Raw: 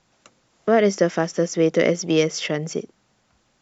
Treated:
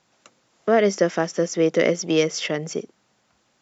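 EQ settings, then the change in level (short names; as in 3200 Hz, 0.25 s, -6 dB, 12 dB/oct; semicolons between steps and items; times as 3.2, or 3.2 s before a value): HPF 180 Hz 6 dB/oct; 0.0 dB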